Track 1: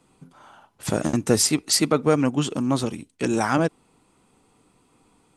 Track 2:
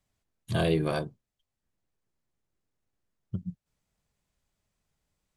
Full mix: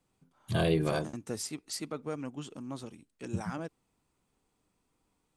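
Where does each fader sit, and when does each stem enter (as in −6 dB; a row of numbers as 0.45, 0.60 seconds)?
−18.0, −1.5 decibels; 0.00, 0.00 seconds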